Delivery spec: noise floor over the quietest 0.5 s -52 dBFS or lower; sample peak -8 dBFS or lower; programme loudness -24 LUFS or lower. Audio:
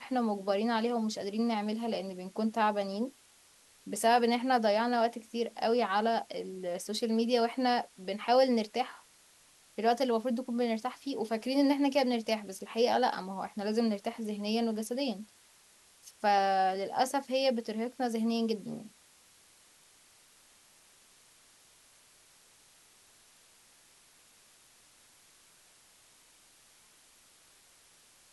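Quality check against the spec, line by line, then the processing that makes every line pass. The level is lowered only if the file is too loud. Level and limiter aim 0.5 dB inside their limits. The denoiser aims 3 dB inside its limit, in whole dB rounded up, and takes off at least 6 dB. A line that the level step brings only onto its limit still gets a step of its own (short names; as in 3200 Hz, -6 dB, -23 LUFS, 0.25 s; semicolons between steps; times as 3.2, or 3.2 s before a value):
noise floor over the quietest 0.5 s -62 dBFS: OK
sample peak -14.0 dBFS: OK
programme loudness -31.0 LUFS: OK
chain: none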